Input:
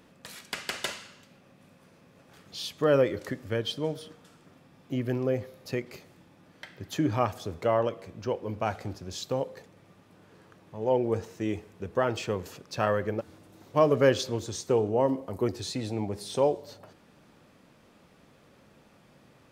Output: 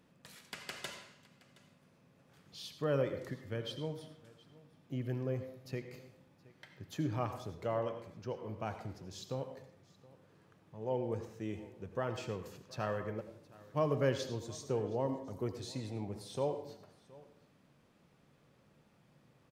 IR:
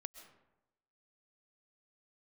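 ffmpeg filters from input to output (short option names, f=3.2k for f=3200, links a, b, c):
-filter_complex "[0:a]equalizer=f=140:w=1.8:g=7,aecho=1:1:720:0.0794[a];[1:a]atrim=start_sample=2205,asetrate=70560,aresample=44100[b];[a][b]afir=irnorm=-1:irlink=0,volume=-2dB"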